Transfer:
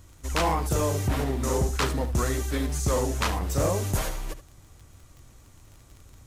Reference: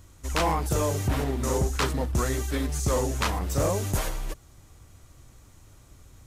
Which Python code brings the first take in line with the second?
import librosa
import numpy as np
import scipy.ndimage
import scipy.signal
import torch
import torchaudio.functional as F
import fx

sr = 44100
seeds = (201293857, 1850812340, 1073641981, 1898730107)

y = fx.fix_declick_ar(x, sr, threshold=6.5)
y = fx.fix_echo_inverse(y, sr, delay_ms=73, level_db=-13.5)